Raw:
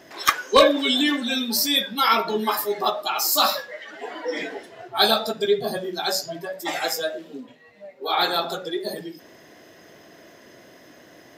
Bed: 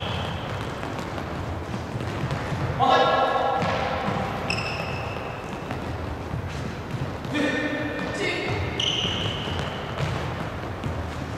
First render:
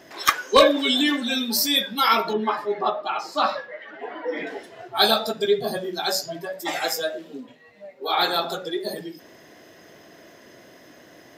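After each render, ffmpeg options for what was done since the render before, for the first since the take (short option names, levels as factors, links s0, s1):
-filter_complex "[0:a]asettb=1/sr,asplit=3[s0][s1][s2];[s0]atrim=end=2.334[s3];[s1]atrim=start=2.33:end=4.47,asetpts=PTS-STARTPTS,afade=t=in:d=0.004:c=qsin,afade=t=out:st=2.136:d=0.004:c=qsin,lowpass=2300[s4];[s2]atrim=start=4.466[s5];[s3][s4]acrossfade=d=0.004:c1=hsin:c2=qsin[s6];[s6][s5]acrossfade=d=0.004:c1=qsin:c2=hsin"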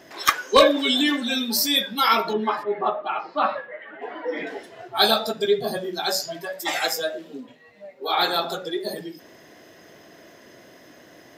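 -filter_complex "[0:a]asettb=1/sr,asplit=3[s0][s1][s2];[s0]atrim=end=2.634[s3];[s1]atrim=start=2.63:end=4.02,asetpts=PTS-STARTPTS,afade=t=in:d=0.004:c=qsin,afade=t=out:st=1.386:d=0.004:c=qsin,lowpass=f=3000:w=0.5412,lowpass=f=3000:w=1.3066[s4];[s2]atrim=start=4.016[s5];[s3][s4]acrossfade=d=0.004:c1=hsin:c2=qsin[s6];[s6][s5]acrossfade=d=0.004:c1=qsin:c2=hsin,asettb=1/sr,asplit=3[s7][s8][s9];[s7]atrim=end=6.204[s10];[s8]atrim=start=6.2:end=6.87,asetpts=PTS-STARTPTS,afade=t=in:d=0.004:c=qsin,afade=t=out:st=0.666:d=0.004:c=qsin,tiltshelf=f=680:g=-4[s11];[s9]atrim=start=6.866[s12];[s10][s11]acrossfade=d=0.004:c1=hsin:c2=qsin[s13];[s13][s12]acrossfade=d=0.004:c1=qsin:c2=hsin"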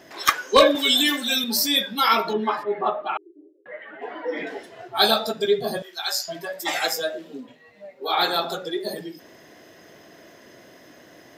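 -filter_complex "[0:a]asettb=1/sr,asplit=3[s0][s1][s2];[s0]atrim=end=0.754[s3];[s1]atrim=start=0.75:end=1.44,asetpts=PTS-STARTPTS,afade=t=in:d=0.004:c=qsin,afade=t=out:st=0.686:d=0.004:c=qsin,aemphasis=mode=production:type=bsi[s4];[s2]atrim=start=1.436[s5];[s3][s4]acrossfade=d=0.004:c1=hsin:c2=qsin[s6];[s6][s5]acrossfade=d=0.004:c1=qsin:c2=hsin,asettb=1/sr,asplit=3[s7][s8][s9];[s7]atrim=end=3.174[s10];[s8]atrim=start=3.17:end=3.66,asetpts=PTS-STARTPTS,afade=t=in:d=0.004:c=qsin,afade=t=out:st=0.486:d=0.004:c=qsin,asuperpass=centerf=360:order=8:qfactor=3.5[s11];[s9]atrim=start=3.656[s12];[s10][s11]acrossfade=d=0.004:c1=hsin:c2=qsin[s13];[s13][s12]acrossfade=d=0.004:c1=qsin:c2=hsin,asettb=1/sr,asplit=3[s14][s15][s16];[s14]atrim=end=5.824[s17];[s15]atrim=start=5.82:end=6.28,asetpts=PTS-STARTPTS,afade=t=in:d=0.004:c=qsin,afade=t=out:st=0.456:d=0.004:c=qsin,highpass=1100[s18];[s16]atrim=start=6.276[s19];[s17][s18]acrossfade=d=0.004:c1=hsin:c2=qsin[s20];[s20][s19]acrossfade=d=0.004:c1=qsin:c2=hsin"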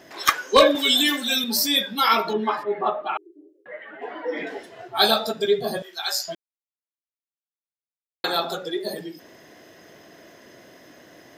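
-filter_complex "[0:a]asplit=3[s0][s1][s2];[s0]atrim=end=6.35,asetpts=PTS-STARTPTS,afade=t=out:st=6.346:d=0.004:c=hsin[s3];[s1]atrim=start=6.35:end=8.24,asetpts=PTS-STARTPTS,volume=0[s4];[s2]atrim=start=8.24,asetpts=PTS-STARTPTS,afade=t=in:d=0.004:c=hsin[s5];[s3][s4][s5]concat=n=3:v=0:a=1"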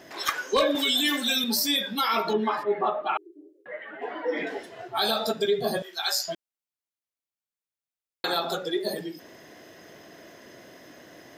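-af "alimiter=limit=0.178:level=0:latency=1:release=91"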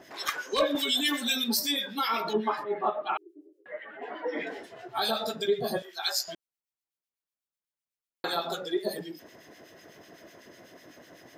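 -filter_complex "[0:a]acrossover=split=1600[s0][s1];[s0]aeval=exprs='val(0)*(1-0.7/2+0.7/2*cos(2*PI*8*n/s))':c=same[s2];[s1]aeval=exprs='val(0)*(1-0.7/2-0.7/2*cos(2*PI*8*n/s))':c=same[s3];[s2][s3]amix=inputs=2:normalize=0"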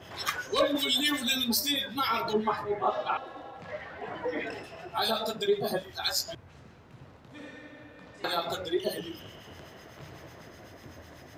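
-filter_complex "[1:a]volume=0.0841[s0];[0:a][s0]amix=inputs=2:normalize=0"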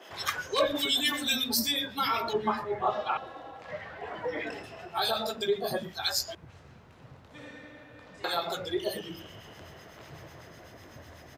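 -filter_complex "[0:a]acrossover=split=270[s0][s1];[s0]adelay=100[s2];[s2][s1]amix=inputs=2:normalize=0"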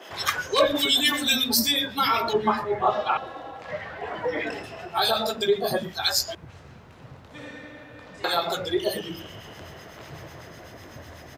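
-af "volume=2"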